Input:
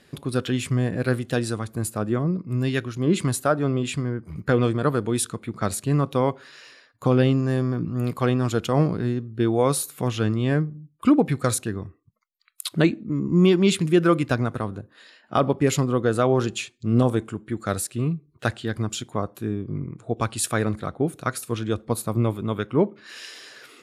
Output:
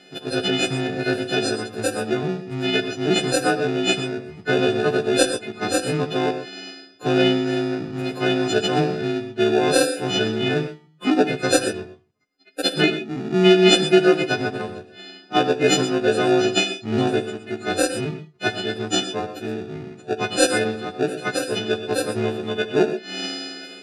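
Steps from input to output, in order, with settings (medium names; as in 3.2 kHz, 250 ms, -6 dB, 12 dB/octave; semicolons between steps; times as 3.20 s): partials quantised in pitch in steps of 3 st; resonant high shelf 1.8 kHz +9.5 dB, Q 1.5; small resonant body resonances 410/730/1400/2700 Hz, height 14 dB; in parallel at -3.5 dB: sample-and-hold 42×; on the sum: band-pass 120–4300 Hz; gated-style reverb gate 150 ms rising, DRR 9 dB; trim -7.5 dB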